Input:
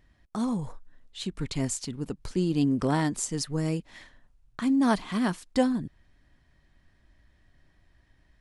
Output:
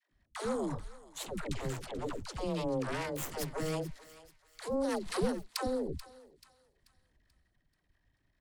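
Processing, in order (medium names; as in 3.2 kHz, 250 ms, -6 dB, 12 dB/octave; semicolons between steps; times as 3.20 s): 3.05–3.52 s: high-pass 59 Hz 12 dB/octave; 3.88–6.75 s: time-frequency box 750–3800 Hz -9 dB; compression 10:1, threshold -29 dBFS, peak gain reduction 11.5 dB; Chebyshev shaper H 3 -37 dB, 6 -8 dB, 7 -19 dB, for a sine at -19 dBFS; peak limiter -28.5 dBFS, peak gain reduction 12 dB; 5.06–5.57 s: transient shaper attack +9 dB, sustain -12 dB; phase dispersion lows, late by 117 ms, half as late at 400 Hz; 1.44–2.34 s: distance through air 54 m; thinning echo 435 ms, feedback 41%, high-pass 1 kHz, level -14.5 dB; trim +3.5 dB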